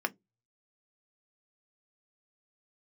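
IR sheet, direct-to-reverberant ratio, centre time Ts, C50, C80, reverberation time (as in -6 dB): 7.5 dB, 3 ms, 30.5 dB, 39.0 dB, 0.15 s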